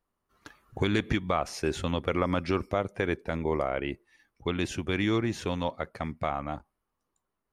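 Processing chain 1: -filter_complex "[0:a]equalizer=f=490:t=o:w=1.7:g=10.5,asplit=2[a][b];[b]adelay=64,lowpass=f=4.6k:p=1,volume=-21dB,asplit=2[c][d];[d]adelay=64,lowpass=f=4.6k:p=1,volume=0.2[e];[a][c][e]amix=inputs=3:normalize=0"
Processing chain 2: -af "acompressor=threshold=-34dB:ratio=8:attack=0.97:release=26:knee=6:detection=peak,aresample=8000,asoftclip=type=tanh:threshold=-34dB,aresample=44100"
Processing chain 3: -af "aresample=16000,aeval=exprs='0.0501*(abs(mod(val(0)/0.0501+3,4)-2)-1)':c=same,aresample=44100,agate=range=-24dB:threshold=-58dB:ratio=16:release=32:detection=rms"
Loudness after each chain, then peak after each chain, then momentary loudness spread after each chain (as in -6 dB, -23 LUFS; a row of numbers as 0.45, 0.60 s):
-24.0, -43.0, -34.5 LUFS; -7.0, -31.5, -23.5 dBFS; 8, 8, 9 LU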